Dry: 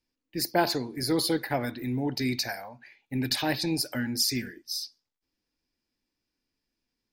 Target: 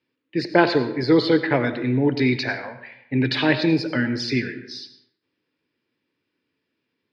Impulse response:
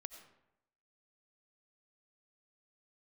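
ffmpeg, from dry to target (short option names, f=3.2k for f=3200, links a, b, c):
-filter_complex "[0:a]highpass=f=110:w=0.5412,highpass=f=110:w=1.3066,equalizer=f=210:t=q:w=4:g=-6,equalizer=f=430:t=q:w=4:g=4,equalizer=f=750:t=q:w=4:g=-9,lowpass=f=3.5k:w=0.5412,lowpass=f=3.5k:w=1.3066,asplit=2[a][b];[1:a]atrim=start_sample=2205[c];[b][c]afir=irnorm=-1:irlink=0,volume=12dB[d];[a][d]amix=inputs=2:normalize=0"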